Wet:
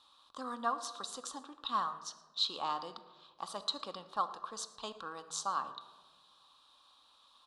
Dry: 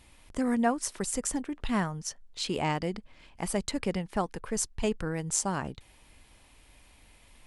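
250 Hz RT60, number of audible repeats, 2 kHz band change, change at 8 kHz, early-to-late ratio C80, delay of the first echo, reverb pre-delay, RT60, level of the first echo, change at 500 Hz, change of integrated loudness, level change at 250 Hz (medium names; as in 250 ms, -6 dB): 1.6 s, 1, -11.0 dB, -12.0 dB, 14.0 dB, 115 ms, 4 ms, 1.3 s, -22.0 dB, -13.0 dB, -7.0 dB, -19.5 dB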